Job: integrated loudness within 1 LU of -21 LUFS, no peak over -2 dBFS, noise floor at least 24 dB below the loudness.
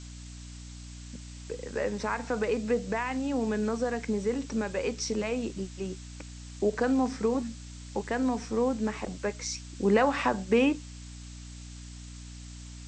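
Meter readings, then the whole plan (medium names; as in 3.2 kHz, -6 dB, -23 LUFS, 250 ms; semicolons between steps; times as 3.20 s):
hum 60 Hz; highest harmonic 300 Hz; hum level -42 dBFS; noise floor -44 dBFS; noise floor target -54 dBFS; loudness -30.0 LUFS; peak level -11.5 dBFS; loudness target -21.0 LUFS
-> hum notches 60/120/180/240/300 Hz; noise print and reduce 10 dB; trim +9 dB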